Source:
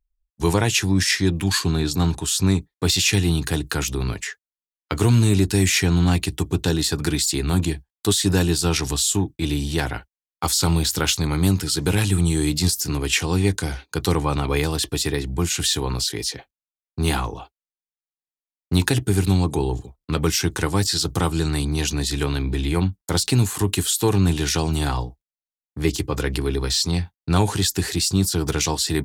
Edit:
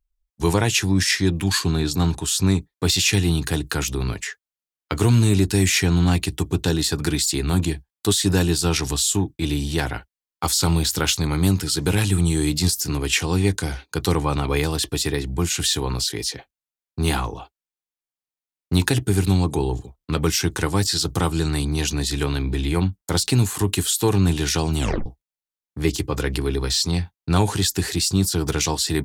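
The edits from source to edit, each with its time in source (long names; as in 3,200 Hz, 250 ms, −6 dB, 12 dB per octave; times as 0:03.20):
0:24.79: tape stop 0.27 s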